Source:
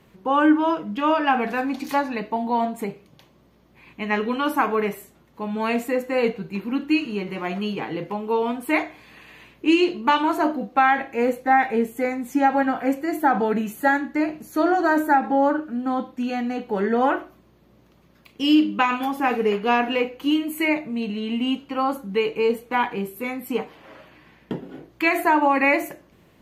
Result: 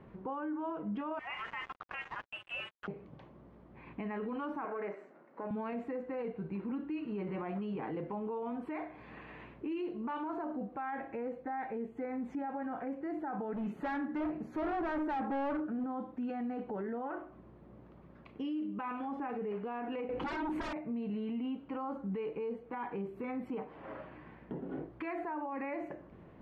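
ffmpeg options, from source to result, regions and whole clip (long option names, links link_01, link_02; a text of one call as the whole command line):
ffmpeg -i in.wav -filter_complex "[0:a]asettb=1/sr,asplit=3[link_01][link_02][link_03];[link_01]atrim=end=1.194[link_04];[link_02]atrim=start=1.19:end=2.88,asetpts=PTS-STARTPTS,afade=type=in:duration=0.004:curve=qsin,afade=type=out:start_time=1.686:duration=0.004:curve=qsin,highpass=1300,lowpass=frequency=3100:width_type=q:width=0.5098,lowpass=frequency=3100:width_type=q:width=0.6013,lowpass=frequency=3100:width_type=q:width=0.9,lowpass=frequency=3100:width_type=q:width=2.563,afreqshift=-3600,acrusher=bits=5:mix=0:aa=0.5[link_05];[link_03]atrim=start=2.876[link_06];[link_04][link_05]acrossfade=duration=0.004:curve1=hsin:curve2=qsin[link_07];[link_07][link_06]acrossfade=duration=0.004:curve1=qsin:curve2=hsin,asettb=1/sr,asplit=3[link_08][link_09][link_10];[link_08]atrim=end=4.654[link_11];[link_09]atrim=start=4.65:end=5.51,asetpts=PTS-STARTPTS,afade=type=in:duration=0.004:curve=qsin,afade=type=out:start_time=0.856:duration=0.004:curve=qsin,aeval=exprs='if(lt(val(0),0),0.447*val(0),val(0))':channel_layout=same,highpass=frequency=220:width=0.5412,highpass=frequency=220:width=1.3066,equalizer=frequency=230:width_type=q:width=4:gain=-4,equalizer=frequency=590:width_type=q:width=4:gain=6,equalizer=frequency=1500:width_type=q:width=4:gain=5,equalizer=frequency=2100:width_type=q:width=4:gain=4,equalizer=frequency=3400:width_type=q:width=4:gain=-9,lowpass=frequency=8000:width=0.5412,lowpass=frequency=8000:width=1.3066[link_12];[link_10]atrim=start=5.506[link_13];[link_11][link_12]acrossfade=duration=0.004:curve1=hsin:curve2=qsin[link_14];[link_14][link_13]acrossfade=duration=0.004:curve1=qsin:curve2=hsin,asettb=1/sr,asplit=3[link_15][link_16][link_17];[link_15]atrim=end=13.534[link_18];[link_16]atrim=start=13.53:end=15.84,asetpts=PTS-STARTPTS,afade=type=in:duration=0.004:curve=qsin,afade=type=out:start_time=2.306:duration=0.004:curve=qsin,highshelf=frequency=12000:gain=5.5,bandreject=frequency=60:width_type=h:width=6,bandreject=frequency=120:width_type=h:width=6,bandreject=frequency=180:width_type=h:width=6,bandreject=frequency=240:width_type=h:width=6,bandreject=frequency=300:width_type=h:width=6,bandreject=frequency=360:width_type=h:width=6,bandreject=frequency=420:width_type=h:width=6,volume=26dB,asoftclip=hard,volume=-26dB[link_19];[link_17]atrim=start=15.836[link_20];[link_18][link_19]acrossfade=duration=0.004:curve1=hsin:curve2=qsin[link_21];[link_21][link_20]acrossfade=duration=0.004:curve1=qsin:curve2=hsin,asettb=1/sr,asplit=3[link_22][link_23][link_24];[link_22]atrim=end=20.094[link_25];[link_23]atrim=start=20.09:end=20.73,asetpts=PTS-STARTPTS,afade=type=in:duration=0.004:curve=qsin,afade=type=out:start_time=0.636:duration=0.004:curve=qsin,lowshelf=frequency=380:gain=3,aeval=exprs='0.335*sin(PI/2*7.94*val(0)/0.335)':channel_layout=same[link_26];[link_24]atrim=start=20.726[link_27];[link_25][link_26]acrossfade=duration=0.004:curve1=hsin:curve2=qsin[link_28];[link_28][link_27]acrossfade=duration=0.004:curve1=qsin:curve2=hsin,lowpass=1400,acompressor=threshold=-33dB:ratio=5,alimiter=level_in=8.5dB:limit=-24dB:level=0:latency=1:release=15,volume=-8.5dB,volume=1dB" out.wav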